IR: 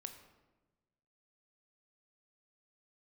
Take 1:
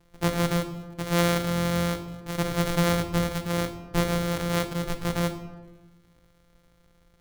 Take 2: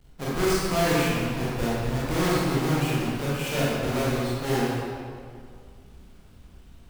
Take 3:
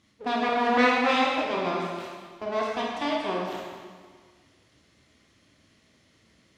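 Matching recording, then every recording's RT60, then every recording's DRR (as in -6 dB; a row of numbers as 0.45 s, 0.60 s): 1; 1.2 s, 2.2 s, 1.7 s; 6.5 dB, -8.5 dB, -3.5 dB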